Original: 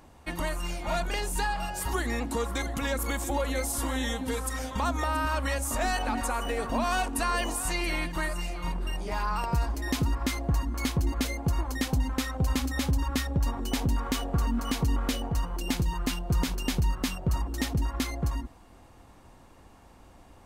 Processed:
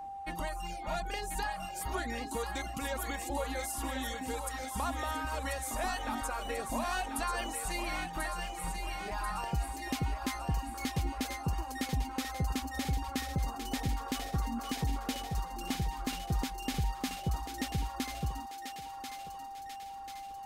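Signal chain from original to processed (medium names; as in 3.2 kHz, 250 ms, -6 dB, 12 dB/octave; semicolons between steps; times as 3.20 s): reverb removal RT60 0.89 s; whistle 790 Hz -34 dBFS; on a send: thinning echo 1039 ms, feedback 60%, high-pass 690 Hz, level -5.5 dB; on the sum: trim -6 dB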